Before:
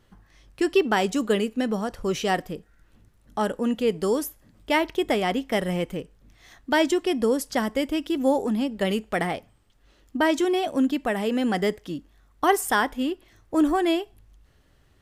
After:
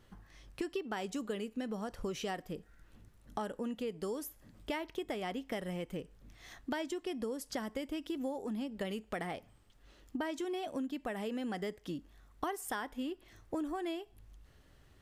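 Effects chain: compression 6:1, threshold -34 dBFS, peak gain reduction 18.5 dB; trim -2 dB

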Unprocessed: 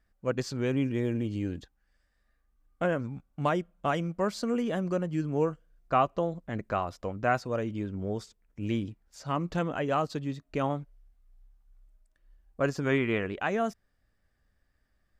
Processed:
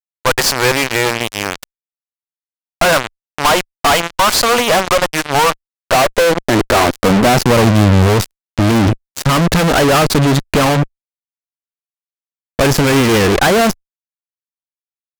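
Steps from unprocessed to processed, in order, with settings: high-pass sweep 880 Hz -> 65 Hz, 5.39–8.48 s; fuzz box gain 48 dB, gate -43 dBFS; Chebyshev shaper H 2 -7 dB, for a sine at -9.5 dBFS; trim +3.5 dB

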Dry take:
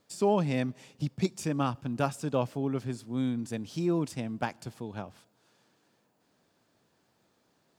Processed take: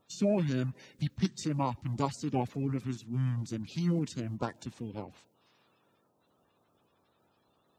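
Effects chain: coarse spectral quantiser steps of 30 dB; dynamic bell 650 Hz, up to -5 dB, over -42 dBFS, Q 1.8; formant shift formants -4 st

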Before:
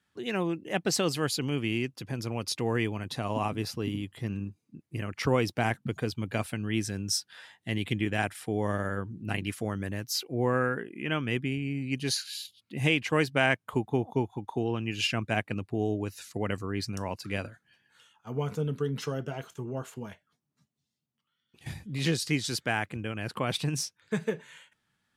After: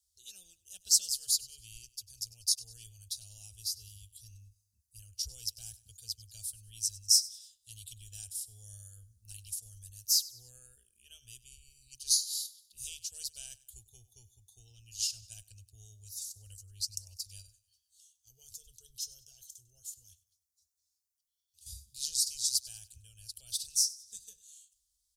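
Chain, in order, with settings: inverse Chebyshev band-stop 140–2200 Hz, stop band 50 dB; feedback delay 98 ms, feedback 42%, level -19.5 dB; trim +8 dB

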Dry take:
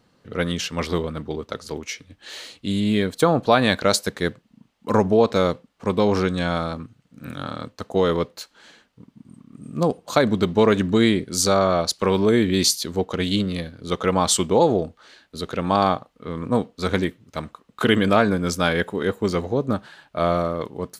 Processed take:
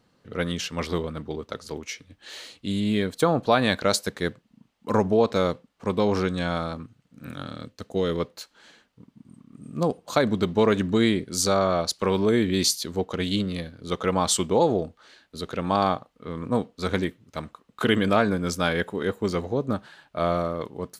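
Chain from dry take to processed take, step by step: 7.43–8.20 s: peaking EQ 940 Hz -9 dB 1.2 oct; trim -3.5 dB

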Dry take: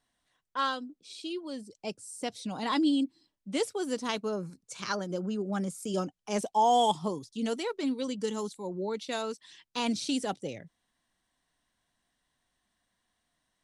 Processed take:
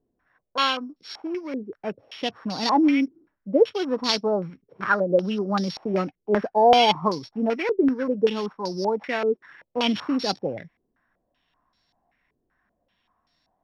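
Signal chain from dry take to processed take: sorted samples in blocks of 8 samples; step-sequenced low-pass 5.2 Hz 400–4400 Hz; trim +6 dB

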